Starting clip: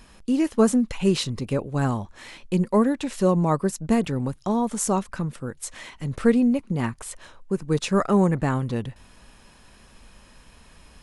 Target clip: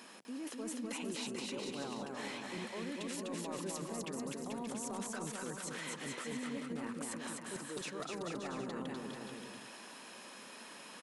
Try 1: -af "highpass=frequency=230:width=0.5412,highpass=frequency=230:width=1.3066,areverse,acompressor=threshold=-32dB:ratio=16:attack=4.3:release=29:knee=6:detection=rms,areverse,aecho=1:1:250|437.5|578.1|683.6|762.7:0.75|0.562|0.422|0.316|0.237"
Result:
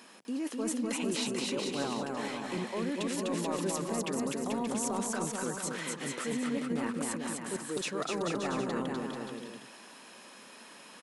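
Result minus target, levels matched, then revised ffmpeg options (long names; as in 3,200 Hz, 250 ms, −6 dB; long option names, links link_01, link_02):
downward compressor: peak gain reduction −9 dB
-af "highpass=frequency=230:width=0.5412,highpass=frequency=230:width=1.3066,areverse,acompressor=threshold=-41.5dB:ratio=16:attack=4.3:release=29:knee=6:detection=rms,areverse,aecho=1:1:250|437.5|578.1|683.6|762.7:0.75|0.562|0.422|0.316|0.237"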